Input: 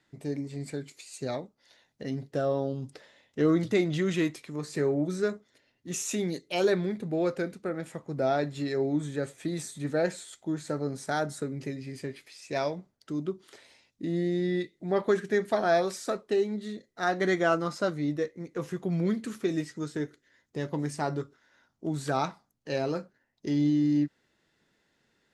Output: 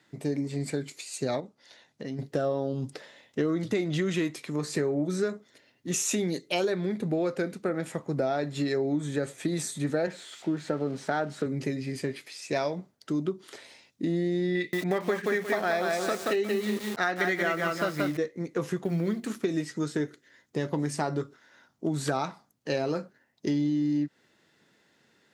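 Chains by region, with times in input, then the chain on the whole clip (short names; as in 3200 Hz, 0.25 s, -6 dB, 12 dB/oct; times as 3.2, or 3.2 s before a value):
1.4–2.19 LPF 10000 Hz + compressor 2:1, threshold -44 dBFS
10.07–11.46 switching spikes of -34.5 dBFS + BPF 120–2900 Hz
14.55–18.17 bell 2200 Hz +9.5 dB 1.1 oct + lo-fi delay 0.179 s, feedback 35%, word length 7-bit, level -3 dB
18.83–19.44 G.711 law mismatch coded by A + notches 60/120/180/240/300/360 Hz
whole clip: HPF 110 Hz; compressor, threshold -31 dBFS; gain +6.5 dB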